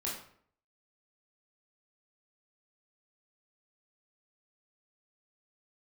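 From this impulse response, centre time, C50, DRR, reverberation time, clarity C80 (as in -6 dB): 40 ms, 4.0 dB, -5.5 dB, 0.60 s, 8.0 dB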